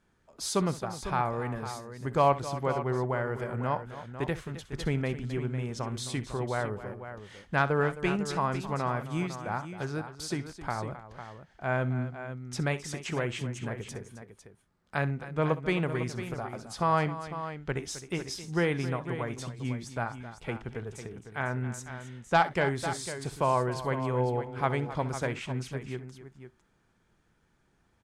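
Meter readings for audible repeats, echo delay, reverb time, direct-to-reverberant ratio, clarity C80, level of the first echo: 3, 64 ms, none, none, none, -16.0 dB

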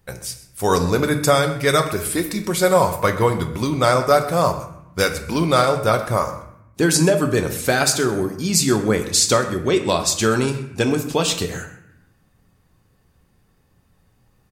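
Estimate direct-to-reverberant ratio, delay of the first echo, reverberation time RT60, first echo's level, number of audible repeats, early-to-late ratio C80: 5.0 dB, 0.128 s, 0.75 s, -17.5 dB, 1, 11.5 dB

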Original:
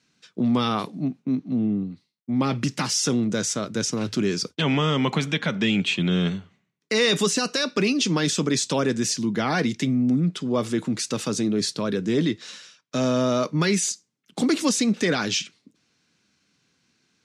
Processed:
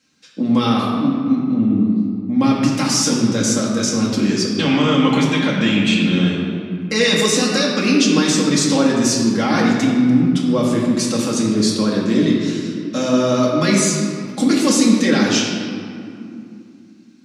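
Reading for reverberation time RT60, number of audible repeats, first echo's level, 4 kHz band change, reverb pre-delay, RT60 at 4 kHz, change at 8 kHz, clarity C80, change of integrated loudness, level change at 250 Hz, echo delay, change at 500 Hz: 2.6 s, none, none, +5.5 dB, 4 ms, 1.4 s, +6.5 dB, 2.5 dB, +7.0 dB, +9.0 dB, none, +6.0 dB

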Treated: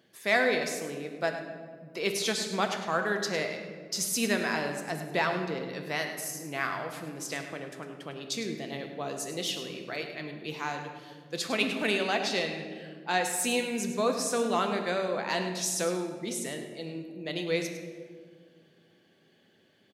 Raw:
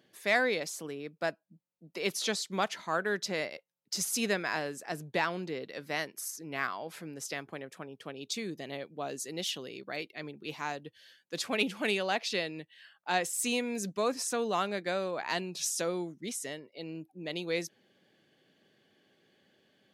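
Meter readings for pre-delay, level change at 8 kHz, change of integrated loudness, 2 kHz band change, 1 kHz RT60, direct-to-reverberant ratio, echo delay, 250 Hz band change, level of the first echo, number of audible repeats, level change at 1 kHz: 4 ms, +2.5 dB, +3.0 dB, +3.0 dB, 1.6 s, 4.0 dB, 0.103 s, +4.0 dB, -12.0 dB, 1, +3.0 dB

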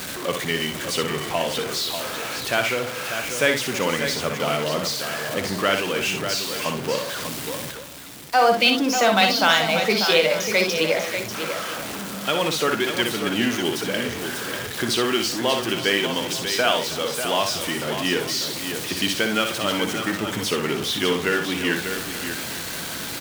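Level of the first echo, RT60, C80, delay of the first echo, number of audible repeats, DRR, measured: -6.5 dB, none, none, 60 ms, 5, none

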